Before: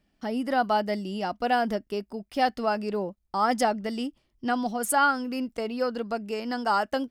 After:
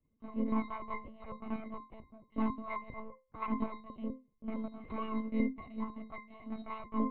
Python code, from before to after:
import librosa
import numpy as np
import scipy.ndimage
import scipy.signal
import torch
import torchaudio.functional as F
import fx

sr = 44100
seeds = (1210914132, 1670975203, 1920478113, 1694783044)

y = fx.lower_of_two(x, sr, delay_ms=0.99)
y = fx.octave_resonator(y, sr, note='C', decay_s=0.27)
y = fx.lpc_monotone(y, sr, seeds[0], pitch_hz=220.0, order=16)
y = F.gain(torch.from_numpy(y), 6.0).numpy()